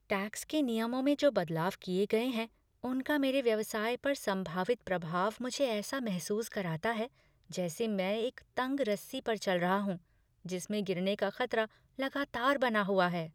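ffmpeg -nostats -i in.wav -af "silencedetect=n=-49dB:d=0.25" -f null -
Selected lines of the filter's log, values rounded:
silence_start: 2.47
silence_end: 2.83 | silence_duration: 0.37
silence_start: 7.07
silence_end: 7.50 | silence_duration: 0.43
silence_start: 9.98
silence_end: 10.45 | silence_duration: 0.47
silence_start: 11.67
silence_end: 11.99 | silence_duration: 0.32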